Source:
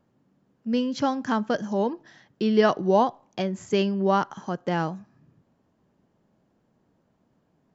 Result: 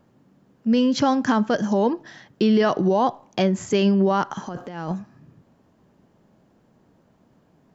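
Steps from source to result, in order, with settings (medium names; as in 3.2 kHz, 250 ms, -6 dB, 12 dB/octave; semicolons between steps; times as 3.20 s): peak limiter -19.5 dBFS, peak gain reduction 11 dB; 4.47–4.92 s: compressor with a negative ratio -36 dBFS, ratio -0.5; trim +8.5 dB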